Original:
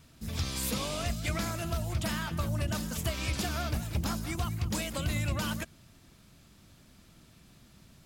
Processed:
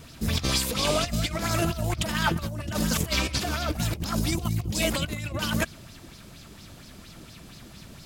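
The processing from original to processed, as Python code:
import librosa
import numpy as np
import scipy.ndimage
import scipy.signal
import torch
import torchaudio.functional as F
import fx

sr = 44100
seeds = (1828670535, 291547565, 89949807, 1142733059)

y = fx.peak_eq(x, sr, hz=1400.0, db=-11.5, octaves=1.3, at=(4.19, 4.83))
y = fx.over_compress(y, sr, threshold_db=-35.0, ratio=-0.5)
y = fx.bell_lfo(y, sr, hz=4.3, low_hz=360.0, high_hz=5300.0, db=9)
y = y * 10.0 ** (7.5 / 20.0)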